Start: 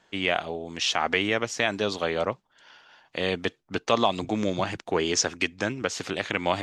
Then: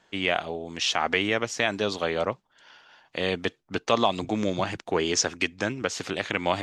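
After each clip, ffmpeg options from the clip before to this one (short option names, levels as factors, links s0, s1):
-af anull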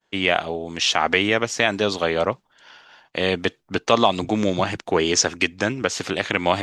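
-af "agate=range=0.0224:threshold=0.002:ratio=3:detection=peak,volume=1.88"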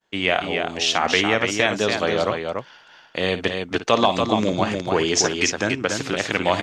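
-af "aecho=1:1:55|286:0.251|0.562,volume=0.891"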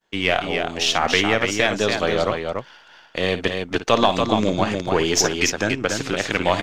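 -af "aeval=exprs='if(lt(val(0),0),0.708*val(0),val(0))':c=same,volume=1.26"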